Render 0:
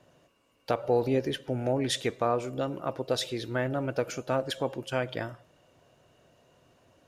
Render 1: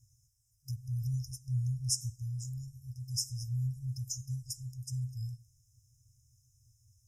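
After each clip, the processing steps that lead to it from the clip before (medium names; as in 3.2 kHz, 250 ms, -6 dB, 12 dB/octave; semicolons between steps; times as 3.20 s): FFT band-reject 130–5000 Hz; trim +4.5 dB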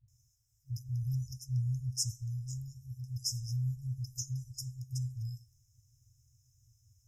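peaking EQ 9.5 kHz -10.5 dB 0.27 oct; phase dispersion highs, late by 81 ms, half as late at 310 Hz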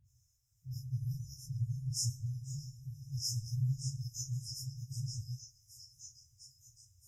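phase randomisation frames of 100 ms; repeats whose band climbs or falls 616 ms, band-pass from 2.5 kHz, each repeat 0.7 oct, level -3 dB; trim -1.5 dB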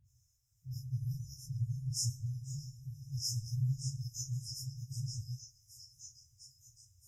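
no audible change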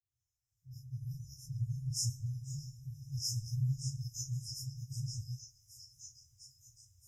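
fade-in on the opening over 1.76 s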